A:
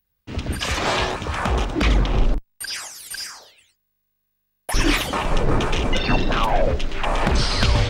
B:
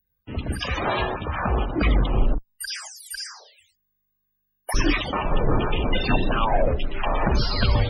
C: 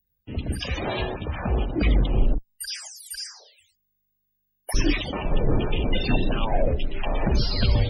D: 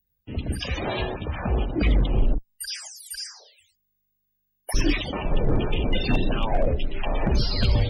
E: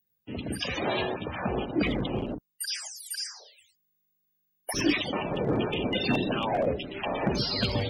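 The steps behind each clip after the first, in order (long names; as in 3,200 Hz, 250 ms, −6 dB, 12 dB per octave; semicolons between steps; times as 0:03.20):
spectral peaks only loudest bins 64; level −1.5 dB
parametric band 1,200 Hz −11 dB 1.2 octaves
hard clipping −12.5 dBFS, distortion −26 dB
high-pass filter 160 Hz 12 dB per octave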